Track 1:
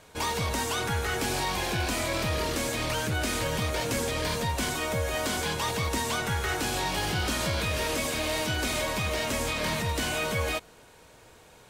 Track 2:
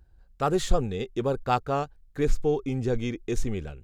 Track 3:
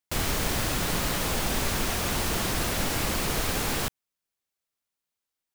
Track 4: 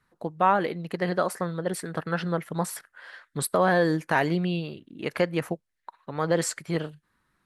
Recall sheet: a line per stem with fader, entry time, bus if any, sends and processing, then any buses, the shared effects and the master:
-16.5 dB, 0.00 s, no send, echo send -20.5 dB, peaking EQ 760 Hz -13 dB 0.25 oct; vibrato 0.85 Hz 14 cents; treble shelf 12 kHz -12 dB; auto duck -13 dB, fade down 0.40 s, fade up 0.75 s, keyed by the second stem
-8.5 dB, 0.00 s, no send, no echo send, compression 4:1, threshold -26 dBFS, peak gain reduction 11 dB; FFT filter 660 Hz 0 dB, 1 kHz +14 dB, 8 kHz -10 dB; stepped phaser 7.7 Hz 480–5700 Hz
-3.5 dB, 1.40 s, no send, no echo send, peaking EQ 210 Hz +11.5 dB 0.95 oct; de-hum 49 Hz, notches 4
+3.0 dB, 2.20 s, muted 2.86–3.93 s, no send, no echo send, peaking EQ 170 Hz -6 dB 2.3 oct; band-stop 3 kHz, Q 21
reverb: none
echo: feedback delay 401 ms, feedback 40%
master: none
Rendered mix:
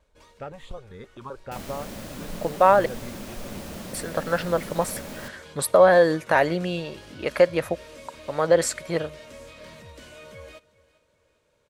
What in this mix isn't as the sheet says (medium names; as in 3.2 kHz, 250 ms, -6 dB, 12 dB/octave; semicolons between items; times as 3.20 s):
stem 3 -3.5 dB -> -13.5 dB; master: extra peaking EQ 570 Hz +10.5 dB 0.36 oct